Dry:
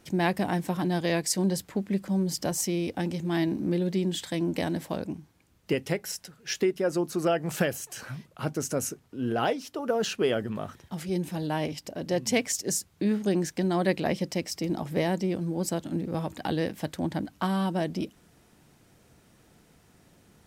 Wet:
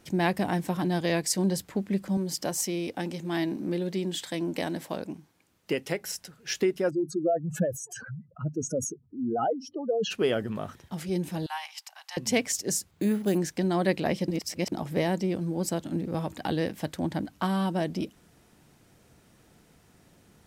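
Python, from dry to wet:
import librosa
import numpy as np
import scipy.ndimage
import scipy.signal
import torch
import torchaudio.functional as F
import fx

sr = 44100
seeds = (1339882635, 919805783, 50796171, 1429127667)

y = fx.highpass(x, sr, hz=250.0, slope=6, at=(2.17, 6.01))
y = fx.spec_expand(y, sr, power=2.8, at=(6.89, 10.1), fade=0.02)
y = fx.cheby1_highpass(y, sr, hz=790.0, order=6, at=(11.46, 12.17))
y = fx.resample_bad(y, sr, factor=4, down='filtered', up='hold', at=(12.91, 13.38))
y = fx.edit(y, sr, fx.reverse_span(start_s=14.28, length_s=0.44), tone=tone)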